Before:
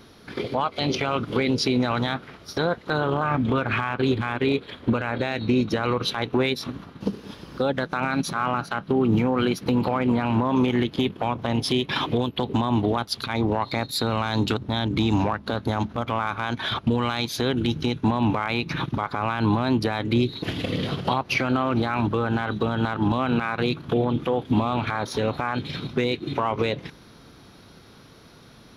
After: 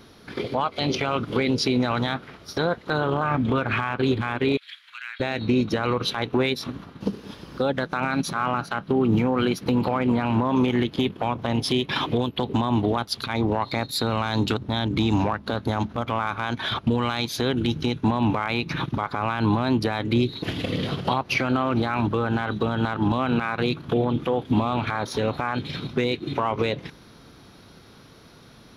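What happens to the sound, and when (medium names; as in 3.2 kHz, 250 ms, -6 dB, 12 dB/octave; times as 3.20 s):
4.57–5.20 s: inverse Chebyshev high-pass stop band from 510 Hz, stop band 60 dB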